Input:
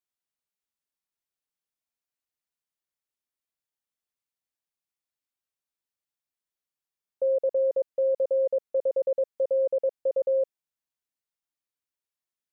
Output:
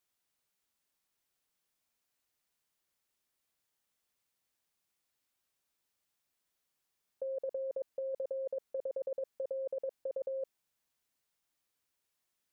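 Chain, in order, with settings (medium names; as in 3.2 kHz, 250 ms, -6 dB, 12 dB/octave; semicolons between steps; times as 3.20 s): compressor with a negative ratio -34 dBFS, ratio -1; trim -2.5 dB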